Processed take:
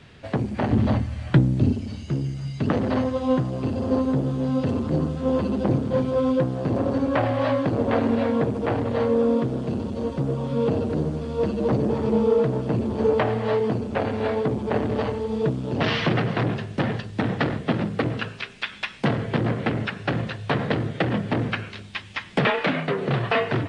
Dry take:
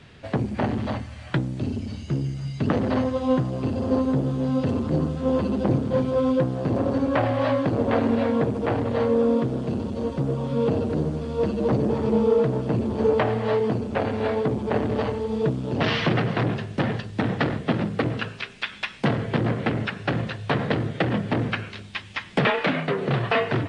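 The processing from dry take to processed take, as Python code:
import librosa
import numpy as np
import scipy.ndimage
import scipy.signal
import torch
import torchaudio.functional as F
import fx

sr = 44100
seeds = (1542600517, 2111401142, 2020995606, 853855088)

y = fx.low_shelf(x, sr, hz=410.0, db=9.5, at=(0.71, 1.73))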